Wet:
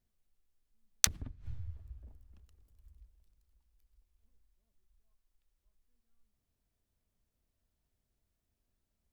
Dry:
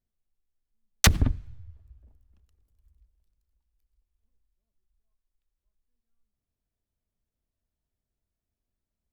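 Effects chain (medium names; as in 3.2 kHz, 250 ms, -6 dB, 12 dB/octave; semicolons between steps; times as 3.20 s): inverted gate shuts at -26 dBFS, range -24 dB; trim +3.5 dB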